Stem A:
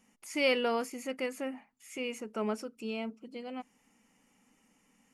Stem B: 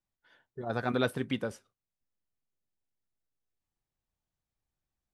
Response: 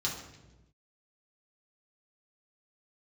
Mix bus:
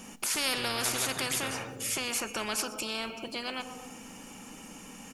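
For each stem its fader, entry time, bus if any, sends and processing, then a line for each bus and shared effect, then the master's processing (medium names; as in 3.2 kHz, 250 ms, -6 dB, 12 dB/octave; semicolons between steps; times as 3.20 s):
+1.5 dB, 0.00 s, send -21 dB, echo send -23.5 dB, band-stop 2 kHz, Q 5.5
-3.5 dB, 0.00 s, send -8.5 dB, no echo send, compression, threshold -33 dBFS, peak gain reduction 10 dB; random flutter of the level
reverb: on, RT60 1.1 s, pre-delay 3 ms
echo: feedback delay 123 ms, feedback 44%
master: spectrum-flattening compressor 4:1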